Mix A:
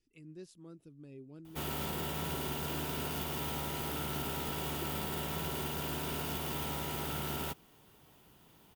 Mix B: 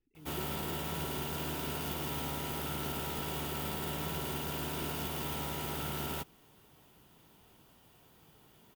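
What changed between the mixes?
speech: add low-pass 1.9 kHz; background: entry -1.30 s

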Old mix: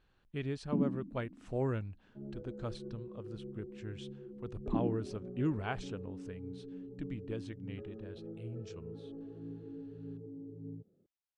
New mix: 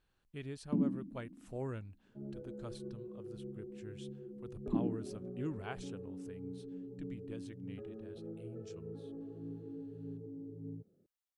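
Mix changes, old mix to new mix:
speech -7.0 dB; master: remove distance through air 91 m

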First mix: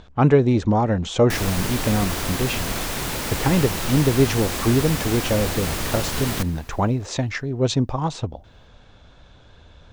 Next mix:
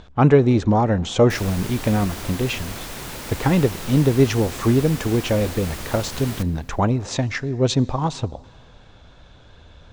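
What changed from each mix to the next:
speech: send on; background -6.5 dB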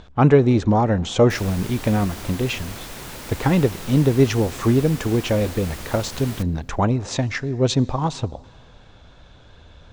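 background: send -10.0 dB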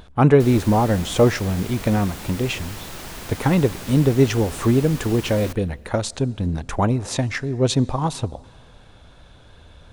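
speech: remove steep low-pass 7.4 kHz 36 dB/octave; background: entry -0.90 s

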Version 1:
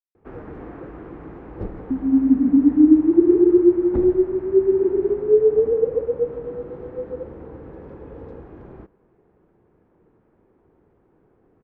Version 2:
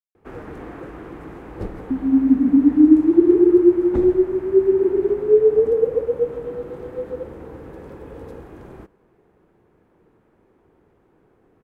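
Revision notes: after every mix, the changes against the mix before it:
master: remove tape spacing loss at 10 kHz 30 dB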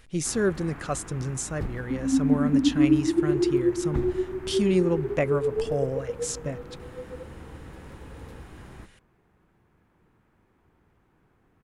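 speech: unmuted; master: add peaking EQ 440 Hz -12 dB 1.7 oct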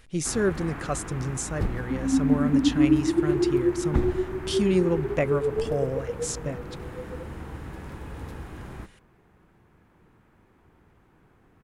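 first sound +5.5 dB

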